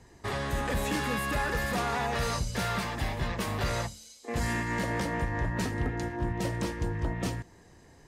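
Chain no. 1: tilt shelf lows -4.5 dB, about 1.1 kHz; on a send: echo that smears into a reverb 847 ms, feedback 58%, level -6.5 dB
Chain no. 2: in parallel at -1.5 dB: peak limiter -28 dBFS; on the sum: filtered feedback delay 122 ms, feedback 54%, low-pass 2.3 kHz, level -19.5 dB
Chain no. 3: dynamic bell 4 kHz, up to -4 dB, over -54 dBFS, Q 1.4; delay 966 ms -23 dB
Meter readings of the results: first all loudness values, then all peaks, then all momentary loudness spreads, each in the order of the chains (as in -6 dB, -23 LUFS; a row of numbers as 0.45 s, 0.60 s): -31.0 LUFS, -28.0 LUFS, -32.0 LUFS; -18.0 dBFS, -17.0 dBFS, -20.0 dBFS; 6 LU, 4 LU, 5 LU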